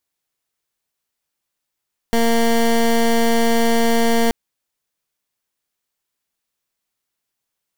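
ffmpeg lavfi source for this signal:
-f lavfi -i "aevalsrc='0.178*(2*lt(mod(231*t,1),0.18)-1)':d=2.18:s=44100"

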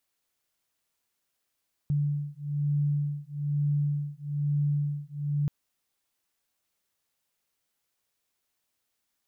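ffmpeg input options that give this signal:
-f lavfi -i "aevalsrc='0.0376*(sin(2*PI*145*t)+sin(2*PI*146.1*t))':d=3.58:s=44100"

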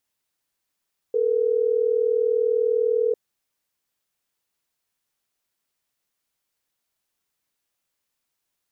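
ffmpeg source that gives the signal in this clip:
-f lavfi -i "aevalsrc='0.0891*(sin(2*PI*440*t)+sin(2*PI*480*t))*clip(min(mod(t,6),2-mod(t,6))/0.005,0,1)':d=3.12:s=44100"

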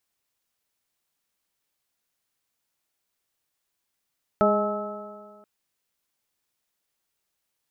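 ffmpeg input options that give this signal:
-f lavfi -i "aevalsrc='0.075*pow(10,-3*t/1.77)*sin(2*PI*206.31*t)+0.075*pow(10,-3*t/1.77)*sin(2*PI*414.46*t)+0.119*pow(10,-3*t/1.77)*sin(2*PI*626.29*t)+0.0447*pow(10,-3*t/1.77)*sin(2*PI*843.54*t)+0.00841*pow(10,-3*t/1.77)*sin(2*PI*1067.93*t)+0.0841*pow(10,-3*t/1.77)*sin(2*PI*1301.03*t)':d=1.03:s=44100"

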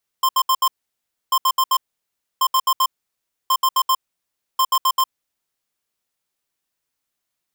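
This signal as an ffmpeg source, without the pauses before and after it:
-f lavfi -i "aevalsrc='0.158*(2*lt(mod(1050*t,1),0.5)-1)*clip(min(mod(mod(t,1.09),0.13),0.06-mod(mod(t,1.09),0.13))/0.005,0,1)*lt(mod(t,1.09),0.52)':d=5.45:s=44100"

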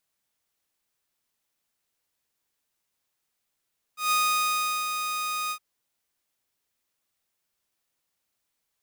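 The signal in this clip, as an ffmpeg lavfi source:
-f lavfi -i "aevalsrc='0.126*(2*mod(1240*t,1)-1)':d=1.614:s=44100,afade=t=in:d=0.141,afade=t=out:st=0.141:d=0.746:silence=0.447,afade=t=out:st=1.54:d=0.074"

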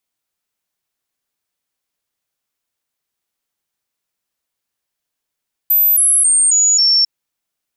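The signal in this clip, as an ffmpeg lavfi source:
-f lavfi -i "aevalsrc='0.355*clip(min(mod(t,0.27),0.27-mod(t,0.27))/0.005,0,1)*sin(2*PI*13700*pow(2,-floor(t/0.27)/3)*mod(t,0.27))':d=1.35:s=44100"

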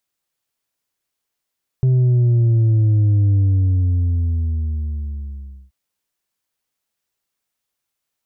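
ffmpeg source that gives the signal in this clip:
-f lavfi -i "aevalsrc='0.251*clip((3.88-t)/2.38,0,1)*tanh(1.5*sin(2*PI*130*3.88/log(65/130)*(exp(log(65/130)*t/3.88)-1)))/tanh(1.5)':d=3.88:s=44100"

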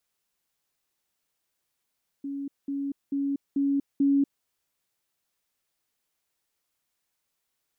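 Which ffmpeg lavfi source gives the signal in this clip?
-f lavfi -i "aevalsrc='pow(10,(-30.5+3*floor(t/0.44))/20)*sin(2*PI*279*t)*clip(min(mod(t,0.44),0.24-mod(t,0.44))/0.005,0,1)':d=2.2:s=44100"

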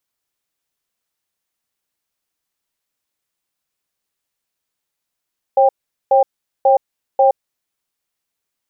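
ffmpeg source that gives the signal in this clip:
-f lavfi -i "aevalsrc='0.282*(sin(2*PI*541*t)+sin(2*PI*793*t))*clip(min(mod(t,0.54),0.12-mod(t,0.54))/0.005,0,1)':d=1.89:s=44100"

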